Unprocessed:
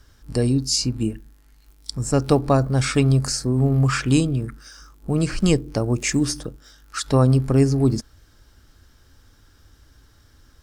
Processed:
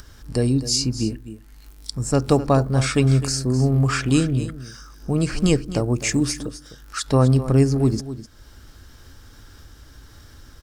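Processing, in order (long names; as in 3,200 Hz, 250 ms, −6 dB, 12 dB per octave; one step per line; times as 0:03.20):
upward compression, threshold −35 dBFS
single-tap delay 256 ms −13.5 dB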